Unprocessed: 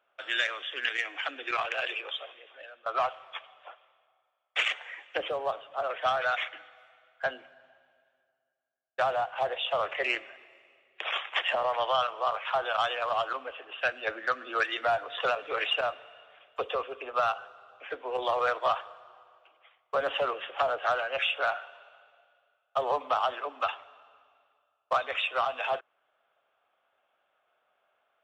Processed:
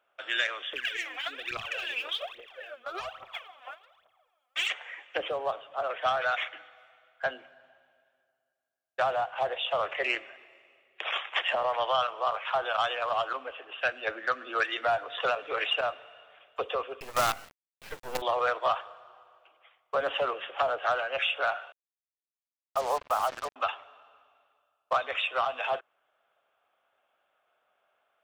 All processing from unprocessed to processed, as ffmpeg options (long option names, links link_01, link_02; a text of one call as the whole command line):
ffmpeg -i in.wav -filter_complex "[0:a]asettb=1/sr,asplit=3[link_01][link_02][link_03];[link_01]atrim=end=0.734[link_04];[link_02]atrim=start=0.73:end=4.7,asetpts=PTS-STARTPTS,afade=type=in:duration=0.004:curve=qsin,afade=type=out:start_time=3.966:duration=0.004:curve=qsin,acrossover=split=280|3000[link_05][link_06][link_07];[link_06]acompressor=threshold=-39dB:ratio=6:attack=3.2:release=140:knee=2.83:detection=peak[link_08];[link_05][link_08][link_07]amix=inputs=3:normalize=0,aphaser=in_gain=1:out_gain=1:delay=4.2:decay=0.79:speed=1.2:type=triangular[link_09];[link_03]atrim=start=4.696[link_10];[link_04][link_09]acrossfade=duration=0.004:curve1=hsin:curve2=qsin[link_11];[link_11][link_10]acrossfade=duration=0.004:curve1=qsin:curve2=hsin,asettb=1/sr,asplit=3[link_12][link_13][link_14];[link_12]atrim=end=17.004[link_15];[link_13]atrim=start=17:end=18.22,asetpts=PTS-STARTPTS,afade=type=in:duration=0.004:curve=qsin,afade=type=out:start_time=1.216:duration=0.004:curve=qsin,highpass=50,agate=range=-33dB:threshold=-47dB:ratio=3:release=100:detection=peak,acrusher=bits=5:dc=4:mix=0:aa=0.000001[link_16];[link_14]atrim=start=18.216[link_17];[link_15][link_16]acrossfade=duration=0.004:curve1=hsin:curve2=qsin[link_18];[link_18][link_17]acrossfade=duration=0.004:curve1=qsin:curve2=hsin,asettb=1/sr,asplit=3[link_19][link_20][link_21];[link_19]atrim=end=21.724[link_22];[link_20]atrim=start=21.72:end=23.56,asetpts=PTS-STARTPTS,afade=type=in:duration=0.004:curve=qsin,afade=type=out:start_time=1.836:duration=0.004:curve=qsin,highpass=380,lowpass=2100,acrusher=bits=5:mix=0:aa=0.5[link_23];[link_21]atrim=start=23.556[link_24];[link_22][link_23]acrossfade=duration=0.004:curve1=hsin:curve2=qsin[link_25];[link_25][link_24]acrossfade=duration=0.004:curve1=qsin:curve2=hsin" out.wav